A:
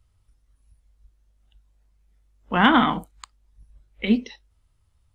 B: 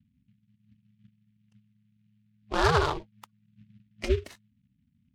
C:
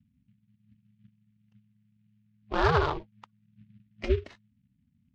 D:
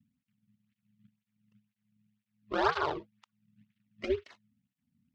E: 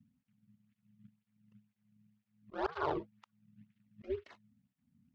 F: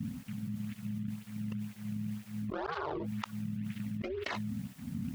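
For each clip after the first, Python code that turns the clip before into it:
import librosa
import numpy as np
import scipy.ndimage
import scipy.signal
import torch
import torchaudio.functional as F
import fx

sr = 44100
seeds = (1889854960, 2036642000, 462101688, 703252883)

y1 = fx.spec_gate(x, sr, threshold_db=-15, keep='strong')
y1 = y1 * np.sin(2.0 * np.pi * 160.0 * np.arange(len(y1)) / sr)
y1 = fx.noise_mod_delay(y1, sr, seeds[0], noise_hz=2400.0, depth_ms=0.054)
y1 = y1 * 10.0 ** (-2.5 / 20.0)
y2 = fx.air_absorb(y1, sr, metres=170.0)
y3 = fx.flanger_cancel(y2, sr, hz=2.0, depth_ms=1.4)
y4 = fx.high_shelf(y3, sr, hz=2200.0, db=-10.0)
y4 = fx.auto_swell(y4, sr, attack_ms=353.0)
y4 = y4 * 10.0 ** (4.0 / 20.0)
y5 = fx.env_flatten(y4, sr, amount_pct=100)
y5 = y5 * 10.0 ** (-5.5 / 20.0)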